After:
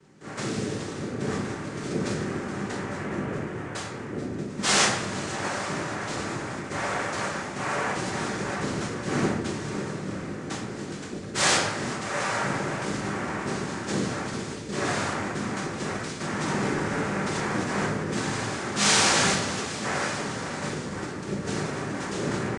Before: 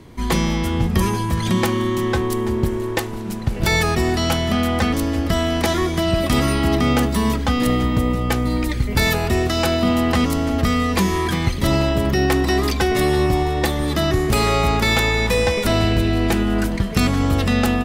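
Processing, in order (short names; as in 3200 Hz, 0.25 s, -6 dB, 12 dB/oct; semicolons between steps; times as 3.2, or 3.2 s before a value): resonator bank D3 sus4, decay 0.22 s; tempo 0.79×; noise vocoder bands 3; shoebox room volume 310 m³, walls mixed, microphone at 1.1 m; Vorbis 64 kbps 22050 Hz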